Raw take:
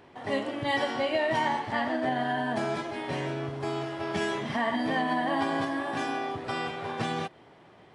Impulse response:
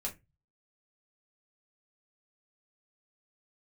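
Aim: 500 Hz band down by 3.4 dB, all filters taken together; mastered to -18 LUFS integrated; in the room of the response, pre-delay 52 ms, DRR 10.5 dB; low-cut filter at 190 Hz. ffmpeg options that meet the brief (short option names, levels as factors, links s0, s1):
-filter_complex "[0:a]highpass=190,equalizer=f=500:t=o:g=-4.5,asplit=2[s0][s1];[1:a]atrim=start_sample=2205,adelay=52[s2];[s1][s2]afir=irnorm=-1:irlink=0,volume=0.266[s3];[s0][s3]amix=inputs=2:normalize=0,volume=4.73"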